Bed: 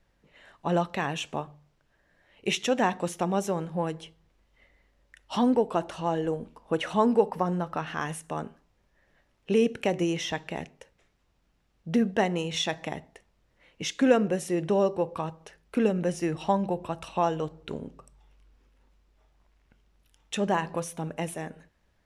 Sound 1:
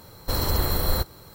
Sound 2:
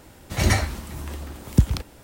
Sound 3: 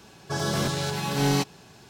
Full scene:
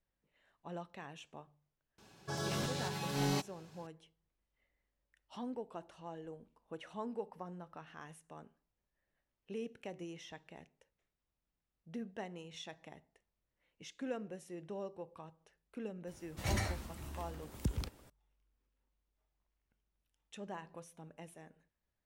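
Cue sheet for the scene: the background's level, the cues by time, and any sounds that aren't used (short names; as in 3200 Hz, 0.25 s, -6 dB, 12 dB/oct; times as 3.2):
bed -19.5 dB
1.98 add 3 -11 dB
16.07 add 2 -13 dB + limiter -11 dBFS
not used: 1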